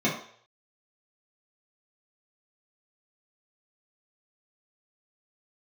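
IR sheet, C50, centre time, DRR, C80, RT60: 6.0 dB, 32 ms, -8.0 dB, 10.0 dB, 0.55 s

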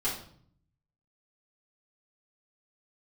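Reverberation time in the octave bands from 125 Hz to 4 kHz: 1.1 s, 0.90 s, 0.60 s, 0.55 s, 0.45 s, 0.45 s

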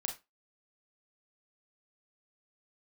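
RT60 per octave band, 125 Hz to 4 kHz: 0.20 s, 0.25 s, 0.20 s, 0.20 s, 0.20 s, 0.20 s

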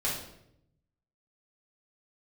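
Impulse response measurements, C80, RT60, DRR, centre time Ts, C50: 7.5 dB, 0.75 s, -6.0 dB, 43 ms, 3.5 dB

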